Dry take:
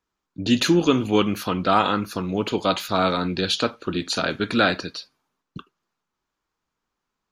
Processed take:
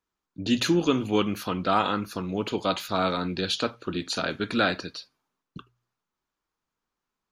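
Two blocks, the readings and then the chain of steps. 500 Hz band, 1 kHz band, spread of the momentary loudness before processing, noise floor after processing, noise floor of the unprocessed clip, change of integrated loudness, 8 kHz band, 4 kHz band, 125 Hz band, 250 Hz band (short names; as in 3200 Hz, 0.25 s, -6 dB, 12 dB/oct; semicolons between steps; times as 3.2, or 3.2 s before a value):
-4.5 dB, -4.5 dB, 9 LU, under -85 dBFS, -82 dBFS, -4.5 dB, -4.5 dB, -4.5 dB, -4.5 dB, -4.5 dB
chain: de-hum 60.39 Hz, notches 2; gain -4.5 dB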